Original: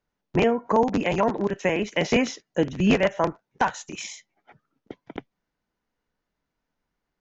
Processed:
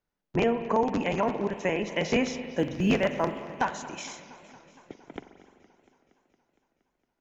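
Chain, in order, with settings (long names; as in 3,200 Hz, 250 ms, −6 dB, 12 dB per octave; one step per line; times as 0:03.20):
spring reverb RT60 2.1 s, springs 43 ms, chirp 20 ms, DRR 10 dB
0:02.43–0:03.63: floating-point word with a short mantissa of 6 bits
feedback echo with a swinging delay time 232 ms, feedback 72%, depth 141 cents, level −19.5 dB
level −4.5 dB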